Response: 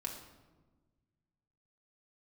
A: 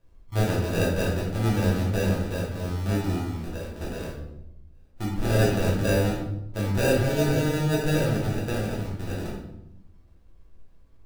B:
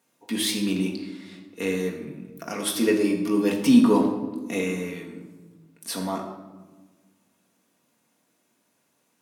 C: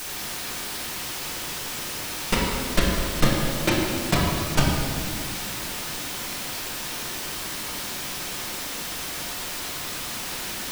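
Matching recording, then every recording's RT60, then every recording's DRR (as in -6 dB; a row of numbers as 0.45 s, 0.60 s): B; 0.85 s, 1.3 s, 2.3 s; -5.0 dB, -1.0 dB, -5.5 dB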